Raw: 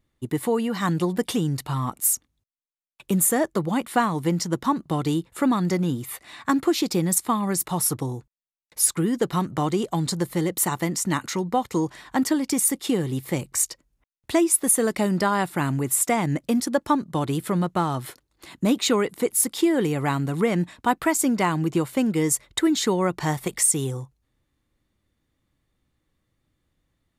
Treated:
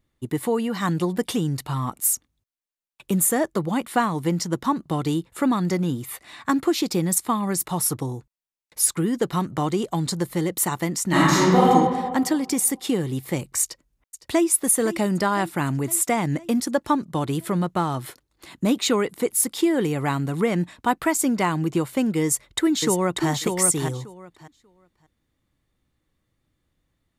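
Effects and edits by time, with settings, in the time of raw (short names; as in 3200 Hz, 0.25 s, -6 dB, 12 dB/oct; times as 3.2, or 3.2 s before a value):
11.08–11.66 reverb throw, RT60 1.6 s, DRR -10 dB
13.62–14.49 echo throw 0.51 s, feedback 65%, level -14 dB
22.23–23.29 echo throw 0.59 s, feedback 15%, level -4 dB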